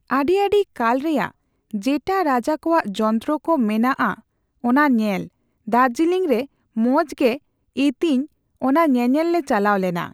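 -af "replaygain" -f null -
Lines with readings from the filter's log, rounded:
track_gain = +0.8 dB
track_peak = 0.374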